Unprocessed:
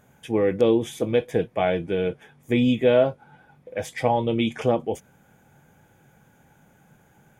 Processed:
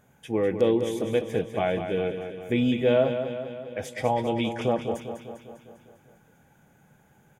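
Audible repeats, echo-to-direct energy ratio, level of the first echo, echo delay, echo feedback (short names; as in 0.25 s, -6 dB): 6, -6.5 dB, -8.5 dB, 0.2 s, 59%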